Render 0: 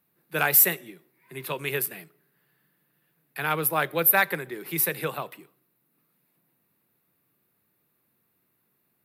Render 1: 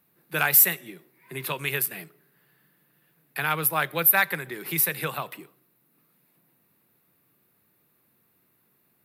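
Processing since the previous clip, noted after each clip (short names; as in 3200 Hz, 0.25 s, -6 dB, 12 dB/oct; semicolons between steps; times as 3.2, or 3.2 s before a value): dynamic EQ 400 Hz, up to -7 dB, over -41 dBFS, Q 0.73; in parallel at -2.5 dB: compressor, threshold -32 dBFS, peak gain reduction 17.5 dB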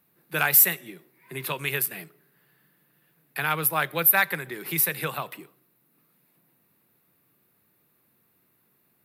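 nothing audible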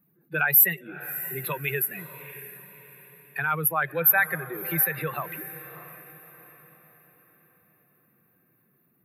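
spectral contrast raised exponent 2; diffused feedback echo 0.631 s, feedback 41%, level -14 dB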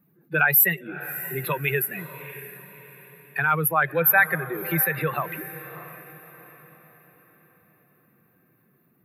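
high shelf 4500 Hz -6 dB; gain +5 dB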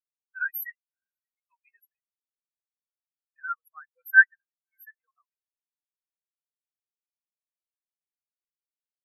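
HPF 990 Hz 12 dB/oct; spectral expander 4:1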